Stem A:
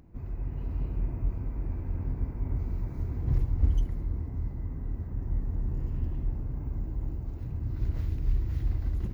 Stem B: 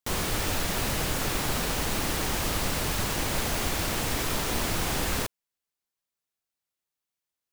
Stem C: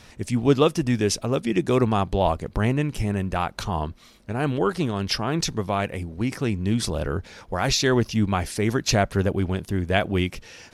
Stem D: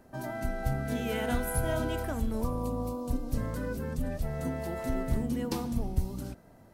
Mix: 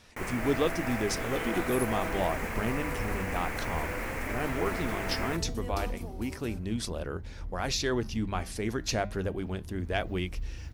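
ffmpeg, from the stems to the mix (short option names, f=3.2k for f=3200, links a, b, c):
-filter_complex "[0:a]adelay=2100,volume=-9.5dB[a];[1:a]highshelf=f=2.8k:t=q:w=3:g=-9,adelay=100,volume=-6.5dB[b];[2:a]acontrast=38,flanger=delay=1.8:depth=6.6:regen=-88:speed=0.29:shape=sinusoidal,volume=-9dB[c];[3:a]highpass=f=300:w=0.5412,highpass=f=300:w=1.3066,adelay=250,volume=-3.5dB[d];[a][b][c][d]amix=inputs=4:normalize=0,equalizer=f=130:t=o:w=0.6:g=-4,bandreject=f=50:t=h:w=6,bandreject=f=100:t=h:w=6,bandreject=f=150:t=h:w=6,bandreject=f=200:t=h:w=6"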